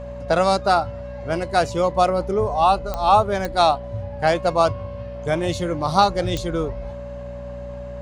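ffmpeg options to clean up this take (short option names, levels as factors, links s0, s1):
-af "adeclick=t=4,bandreject=f=60.6:t=h:w=4,bandreject=f=121.2:t=h:w=4,bandreject=f=181.8:t=h:w=4,bandreject=f=242.4:t=h:w=4,bandreject=f=570:w=30"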